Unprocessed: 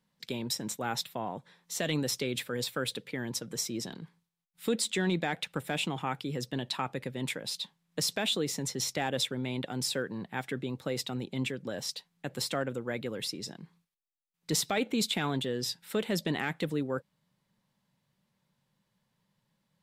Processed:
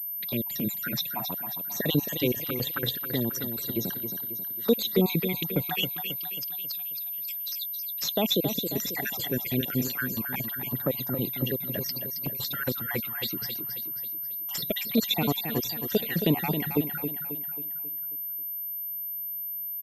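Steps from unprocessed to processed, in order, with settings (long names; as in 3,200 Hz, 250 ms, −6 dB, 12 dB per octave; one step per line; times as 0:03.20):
time-frequency cells dropped at random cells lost 55%
0:05.86–0:08.02: inverse Chebyshev high-pass filter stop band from 870 Hz, stop band 70 dB
flanger swept by the level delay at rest 9 ms, full sweep at −33 dBFS
repeating echo 270 ms, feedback 48%, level −8 dB
switching amplifier with a slow clock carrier 13,000 Hz
level +9 dB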